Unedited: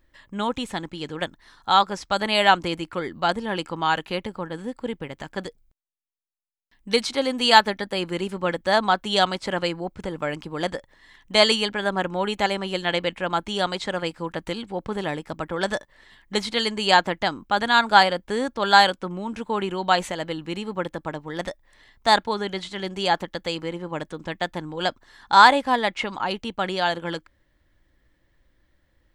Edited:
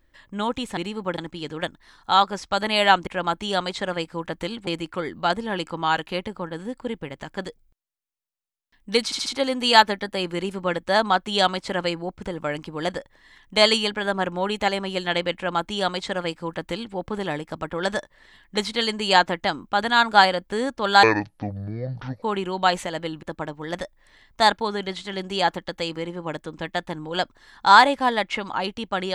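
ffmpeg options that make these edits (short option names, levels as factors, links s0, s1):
-filter_complex "[0:a]asplit=11[s0][s1][s2][s3][s4][s5][s6][s7][s8][s9][s10];[s0]atrim=end=0.772[s11];[s1]atrim=start=20.478:end=20.892[s12];[s2]atrim=start=0.768:end=2.662[s13];[s3]atrim=start=13.128:end=14.732[s14];[s4]atrim=start=2.658:end=7.112[s15];[s5]atrim=start=7.038:end=7.112[s16];[s6]atrim=start=7.038:end=7.112[s17];[s7]atrim=start=7.038:end=18.814[s18];[s8]atrim=start=18.81:end=19.48,asetpts=PTS-STARTPTS,asetrate=24696,aresample=44100,atrim=end_sample=52762,asetpts=PTS-STARTPTS[s19];[s9]atrim=start=19.476:end=20.482[s20];[s10]atrim=start=20.888[s21];[s11][s12]acrossfade=d=0.004:c1=hsin:c2=hsin[s22];[s22][s13]acrossfade=d=0.004:c1=hsin:c2=hsin[s23];[s23][s14]acrossfade=d=0.004:c1=hsin:c2=hsin[s24];[s24][s15]acrossfade=d=0.004:c1=hsin:c2=hsin[s25];[s25][s16]acrossfade=d=0.004:c1=hsin:c2=hsin[s26];[s26][s17]acrossfade=d=0.004:c1=hsin:c2=hsin[s27];[s27][s18]acrossfade=d=0.004:c1=hsin:c2=hsin[s28];[s28][s19]acrossfade=d=0.004:c1=hsin:c2=hsin[s29];[s29][s20]acrossfade=d=0.004:c1=hsin:c2=hsin[s30];[s30][s21]acrossfade=d=0.004:c1=hsin:c2=hsin"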